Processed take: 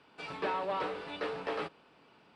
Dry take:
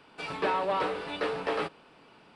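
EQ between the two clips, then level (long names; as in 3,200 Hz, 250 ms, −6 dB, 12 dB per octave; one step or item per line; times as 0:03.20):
high-pass filter 43 Hz
low-pass filter 8,100 Hz 12 dB per octave
−5.5 dB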